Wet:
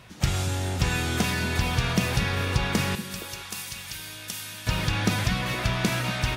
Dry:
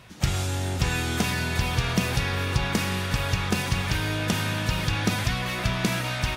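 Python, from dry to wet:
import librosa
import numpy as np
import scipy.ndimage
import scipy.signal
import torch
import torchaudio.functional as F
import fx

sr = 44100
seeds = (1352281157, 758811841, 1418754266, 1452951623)

y = fx.pre_emphasis(x, sr, coefficient=0.9, at=(2.95, 4.67))
y = fx.echo_stepped(y, sr, ms=234, hz=170.0, octaves=1.4, feedback_pct=70, wet_db=-7)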